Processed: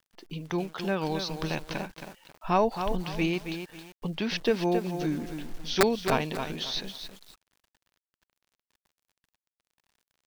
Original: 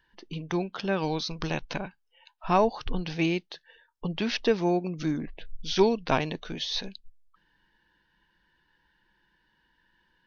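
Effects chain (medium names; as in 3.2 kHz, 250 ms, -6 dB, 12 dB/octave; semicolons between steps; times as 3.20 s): integer overflow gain 10 dB; bit crusher 10-bit; bit-crushed delay 271 ms, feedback 35%, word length 7-bit, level -7.5 dB; trim -1.5 dB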